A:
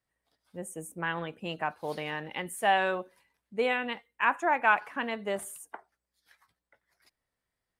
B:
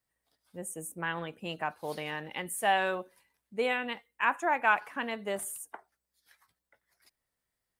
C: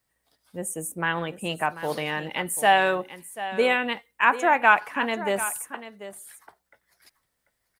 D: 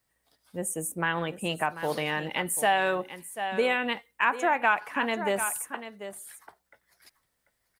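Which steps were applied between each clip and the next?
treble shelf 6.8 kHz +8.5 dB; trim -2 dB
delay 740 ms -13.5 dB; trim +8 dB
compression 2:1, threshold -24 dBFS, peak gain reduction 7.5 dB

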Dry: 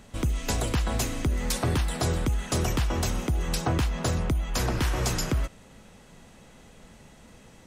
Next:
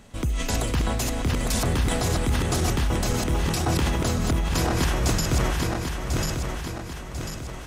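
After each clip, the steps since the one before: backward echo that repeats 522 ms, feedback 68%, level -3 dB; decay stretcher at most 25 dB/s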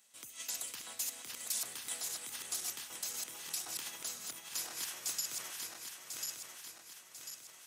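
high-pass 110 Hz 12 dB/octave; differentiator; trim -6 dB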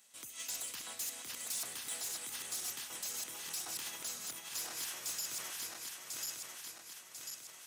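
saturation -37 dBFS, distortion -11 dB; trim +2.5 dB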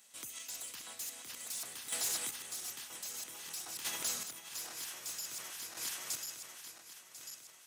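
level rider gain up to 3 dB; square tremolo 0.52 Hz, depth 60%, duty 20%; trim +2.5 dB

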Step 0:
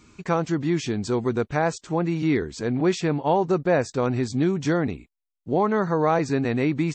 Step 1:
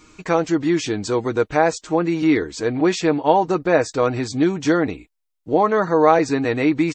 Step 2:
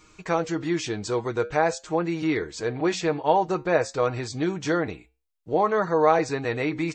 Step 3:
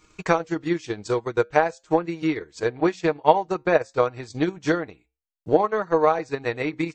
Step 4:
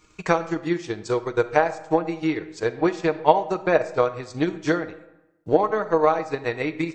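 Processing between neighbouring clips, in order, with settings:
peaking EQ 150 Hz -12 dB 0.73 oct; comb 6.4 ms, depth 47%; trim +5 dB
peaking EQ 270 Hz -9 dB 0.41 oct; flange 0.51 Hz, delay 6.4 ms, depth 1.8 ms, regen -84%
transient shaper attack +11 dB, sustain -10 dB; trim -3 dB
reverberation RT60 0.95 s, pre-delay 4 ms, DRR 13 dB

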